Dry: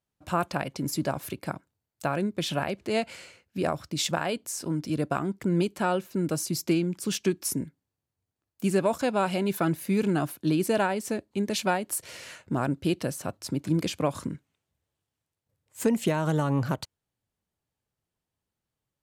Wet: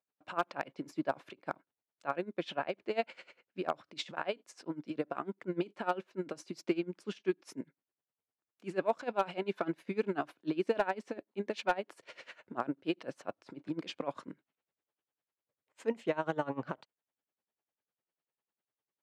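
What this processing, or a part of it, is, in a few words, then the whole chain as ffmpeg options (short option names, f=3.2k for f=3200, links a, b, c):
helicopter radio: -af "highpass=330,lowpass=2.9k,aeval=exprs='val(0)*pow(10,-21*(0.5-0.5*cos(2*PI*10*n/s))/20)':c=same,asoftclip=type=hard:threshold=-18.5dB"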